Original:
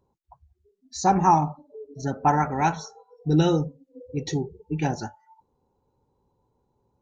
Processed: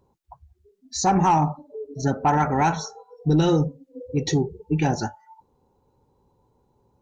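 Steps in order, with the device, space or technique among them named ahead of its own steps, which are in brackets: soft clipper into limiter (saturation -11.5 dBFS, distortion -19 dB; peak limiter -18 dBFS, peak gain reduction 5.5 dB); trim +6 dB

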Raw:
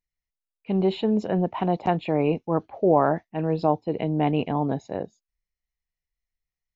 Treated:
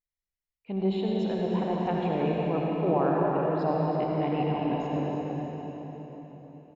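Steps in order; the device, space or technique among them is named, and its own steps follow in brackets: cave (delay 321 ms -8.5 dB; reverberation RT60 4.4 s, pre-delay 60 ms, DRR -3 dB); trim -8.5 dB

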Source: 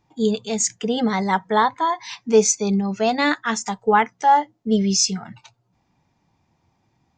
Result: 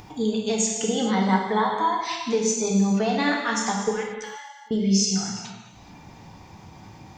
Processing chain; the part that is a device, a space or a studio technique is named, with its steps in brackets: upward and downward compression (upward compressor, threshold -32 dBFS; compression, threshold -23 dBFS, peak gain reduction 13 dB); 3.91–4.71 s: Chebyshev high-pass 2.3 kHz, order 2; gated-style reverb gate 470 ms falling, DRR -1 dB

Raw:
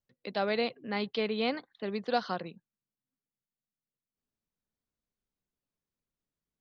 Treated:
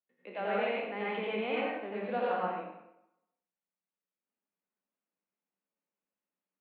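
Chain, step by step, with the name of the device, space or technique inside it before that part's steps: spectral sustain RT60 0.50 s; supermarket ceiling speaker (band-pass 260–5200 Hz; reverberation RT60 0.80 s, pre-delay 80 ms, DRR -6 dB); elliptic band-pass 180–2800 Hz, stop band 40 dB; distance through air 130 m; trim -6.5 dB

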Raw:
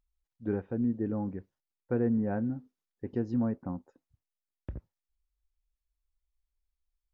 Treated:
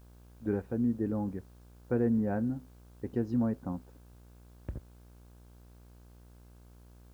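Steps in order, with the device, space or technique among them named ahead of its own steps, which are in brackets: video cassette with head-switching buzz (mains buzz 60 Hz, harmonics 28, -55 dBFS -7 dB/octave; white noise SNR 36 dB)

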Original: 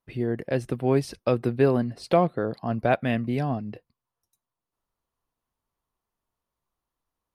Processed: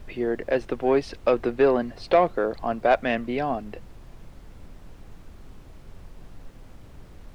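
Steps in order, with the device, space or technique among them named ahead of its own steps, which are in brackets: aircraft cabin announcement (band-pass 360–3800 Hz; saturation -14.5 dBFS, distortion -17 dB; brown noise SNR 15 dB); trim +5.5 dB

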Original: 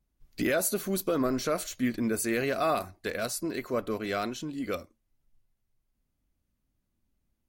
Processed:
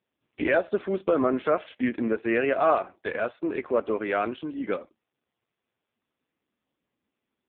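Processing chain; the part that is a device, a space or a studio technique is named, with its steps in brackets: telephone (band-pass 300–3100 Hz; trim +7 dB; AMR-NB 5.15 kbps 8 kHz)

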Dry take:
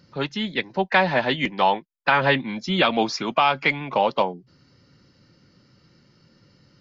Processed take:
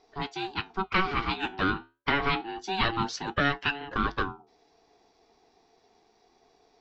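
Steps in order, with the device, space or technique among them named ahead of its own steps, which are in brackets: alien voice (ring modulator 570 Hz; flange 0.3 Hz, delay 6.4 ms, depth 8.1 ms, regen -73%)

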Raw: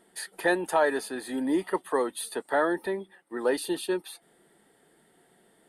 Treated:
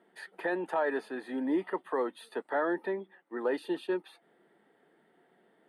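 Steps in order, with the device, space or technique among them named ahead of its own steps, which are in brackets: DJ mixer with the lows and highs turned down (three-band isolator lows -16 dB, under 160 Hz, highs -21 dB, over 3.1 kHz; peak limiter -18.5 dBFS, peak gain reduction 6 dB); trim -2.5 dB

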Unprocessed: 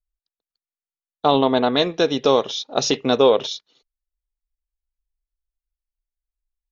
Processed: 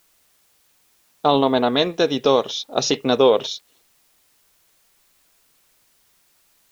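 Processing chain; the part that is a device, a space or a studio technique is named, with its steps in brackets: plain cassette with noise reduction switched in (tape noise reduction on one side only decoder only; wow and flutter 27 cents; white noise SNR 38 dB)

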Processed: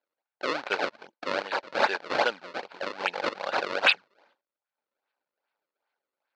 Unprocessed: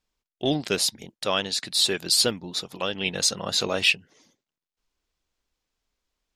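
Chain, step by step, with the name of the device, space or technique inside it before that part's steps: circuit-bent sampling toy (decimation with a swept rate 32×, swing 160% 2.5 Hz; cabinet simulation 500–5100 Hz, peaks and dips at 560 Hz +6 dB, 850 Hz +8 dB, 1.5 kHz +9 dB, 2.4 kHz +5 dB, 4.3 kHz +6 dB); trim -4 dB

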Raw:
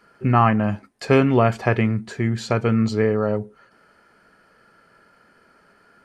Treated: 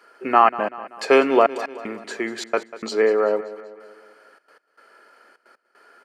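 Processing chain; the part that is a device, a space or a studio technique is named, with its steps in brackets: high-pass 340 Hz 24 dB/octave; trance gate with a delay (trance gate "xxxxx.x..x" 154 bpm -60 dB; feedback delay 192 ms, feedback 52%, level -16 dB); trim +3.5 dB

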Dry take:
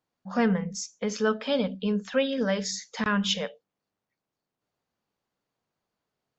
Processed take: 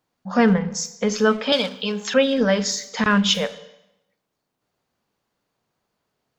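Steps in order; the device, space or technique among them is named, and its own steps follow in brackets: saturated reverb return (on a send at -10 dB: reverberation RT60 0.85 s, pre-delay 20 ms + saturation -30 dBFS, distortion -7 dB); 1.52–2.14 s: on the sum: tilt EQ +4 dB/octave; trim +7.5 dB

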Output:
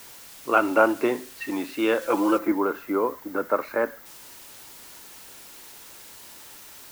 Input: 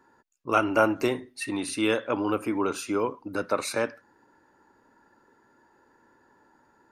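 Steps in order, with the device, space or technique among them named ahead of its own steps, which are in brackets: wax cylinder (band-pass 260–2300 Hz; wow and flutter; white noise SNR 18 dB); 2.38–4.06 s: time-frequency box 2.2–12 kHz -9 dB; 2.01–2.52 s: comb 5.9 ms, depth 88%; trim +3.5 dB

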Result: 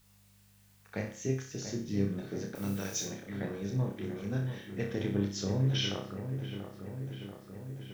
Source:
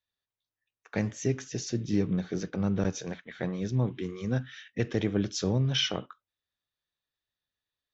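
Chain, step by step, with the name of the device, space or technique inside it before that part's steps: video cassette with head-switching buzz (mains buzz 50 Hz, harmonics 4, -60 dBFS -4 dB/octave; white noise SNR 30 dB); 2.55–3.05 s: tilt EQ +4.5 dB/octave; flutter echo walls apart 5.2 m, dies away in 0.43 s; feedback echo behind a low-pass 687 ms, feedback 70%, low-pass 1.9 kHz, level -8.5 dB; trim -7 dB

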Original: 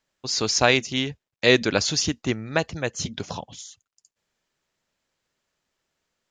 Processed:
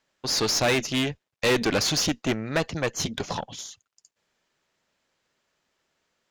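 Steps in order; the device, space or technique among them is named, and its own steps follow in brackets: tube preamp driven hard (valve stage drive 25 dB, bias 0.55; bass shelf 140 Hz -7 dB; treble shelf 6.9 kHz -7 dB); trim +7.5 dB

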